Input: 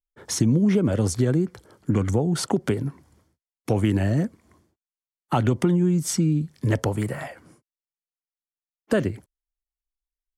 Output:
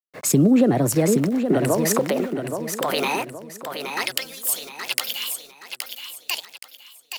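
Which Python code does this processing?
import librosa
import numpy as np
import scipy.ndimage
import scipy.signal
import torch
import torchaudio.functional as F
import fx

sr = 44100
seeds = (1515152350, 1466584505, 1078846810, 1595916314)

p1 = fx.speed_glide(x, sr, from_pct=121, to_pct=168)
p2 = fx.filter_sweep_highpass(p1, sr, from_hz=140.0, to_hz=3000.0, start_s=0.61, end_s=4.28, q=0.84)
p3 = fx.over_compress(p2, sr, threshold_db=-36.0, ratio=-1.0)
p4 = p2 + F.gain(torch.from_numpy(p3), 1.0).numpy()
p5 = np.where(np.abs(p4) >= 10.0 ** (-40.0 / 20.0), p4, 0.0)
p6 = p5 + fx.echo_feedback(p5, sr, ms=822, feedback_pct=43, wet_db=-5.0, dry=0)
p7 = fx.band_widen(p6, sr, depth_pct=40)
y = F.gain(torch.from_numpy(p7), 1.5).numpy()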